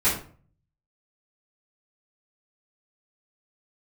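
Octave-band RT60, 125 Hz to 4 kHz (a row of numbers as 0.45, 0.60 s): 0.85, 0.55, 0.45, 0.40, 0.35, 0.30 s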